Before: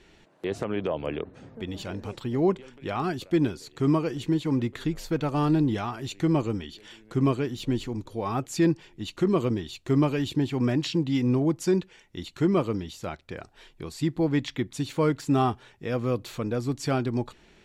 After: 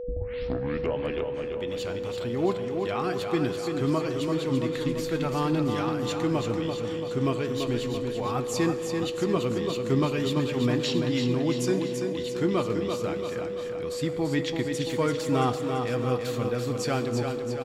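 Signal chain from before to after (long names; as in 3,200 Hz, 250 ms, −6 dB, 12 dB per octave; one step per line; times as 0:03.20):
turntable start at the beginning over 0.99 s
tilt shelving filter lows −3 dB
noise gate with hold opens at −46 dBFS
on a send at −12 dB: convolution reverb RT60 2.7 s, pre-delay 58 ms
on the sum: flanger 0.21 Hz, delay 7.3 ms, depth 1.6 ms, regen +78%
steady tone 490 Hz −36 dBFS
repeating echo 337 ms, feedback 55%, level −6 dB
level +3.5 dB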